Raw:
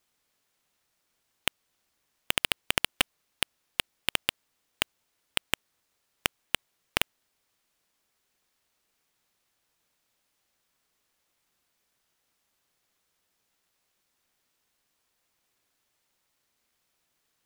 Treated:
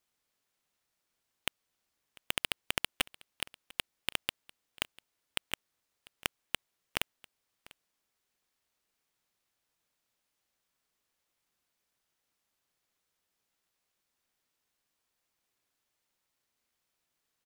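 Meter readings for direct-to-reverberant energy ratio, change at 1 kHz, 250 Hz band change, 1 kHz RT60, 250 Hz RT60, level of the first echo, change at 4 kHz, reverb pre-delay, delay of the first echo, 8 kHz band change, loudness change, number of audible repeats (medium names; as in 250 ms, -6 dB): no reverb, -6.5 dB, -6.5 dB, no reverb, no reverb, -22.5 dB, -6.5 dB, no reverb, 696 ms, -6.5 dB, -6.5 dB, 1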